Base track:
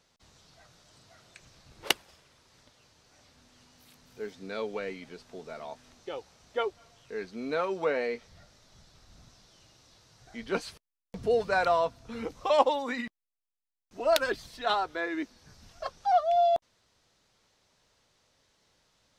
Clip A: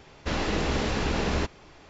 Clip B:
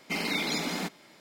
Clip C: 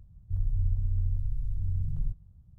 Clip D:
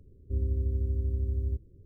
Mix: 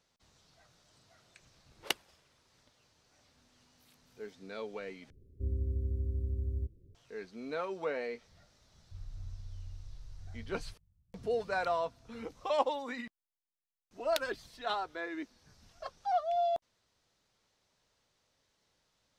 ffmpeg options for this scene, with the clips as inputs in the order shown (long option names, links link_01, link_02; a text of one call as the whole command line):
ffmpeg -i bed.wav -i cue0.wav -i cue1.wav -i cue2.wav -i cue3.wav -filter_complex "[0:a]volume=-7dB,asplit=2[link_01][link_02];[link_01]atrim=end=5.104[link_03];[4:a]atrim=end=1.85,asetpts=PTS-STARTPTS,volume=-5dB[link_04];[link_02]atrim=start=6.946[link_05];[3:a]atrim=end=2.58,asetpts=PTS-STARTPTS,volume=-17dB,afade=type=in:duration=0.004:curve=hsin,afade=type=out:start_time=2.576:duration=0.004:curve=hsin,adelay=8610[link_06];[link_03][link_04]acrossfade=duration=0.004:curve1=hsin:curve2=hsin[link_07];[link_07][link_05]acrossfade=duration=0.004:curve1=hsin:curve2=hsin[link_08];[link_08][link_06]amix=inputs=2:normalize=0" out.wav